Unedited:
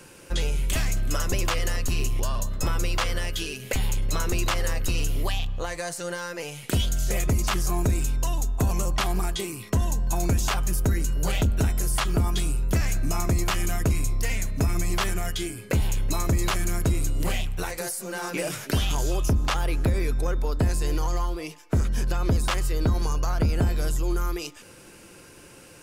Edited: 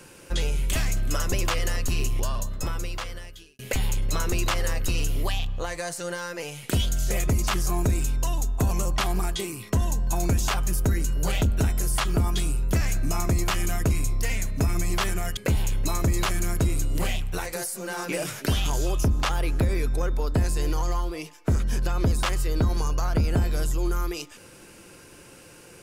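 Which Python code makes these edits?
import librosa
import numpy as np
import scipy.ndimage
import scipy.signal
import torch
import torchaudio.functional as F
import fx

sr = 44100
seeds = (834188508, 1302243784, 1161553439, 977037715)

y = fx.edit(x, sr, fx.fade_out_span(start_s=2.2, length_s=1.39),
    fx.cut(start_s=15.37, length_s=0.25), tone=tone)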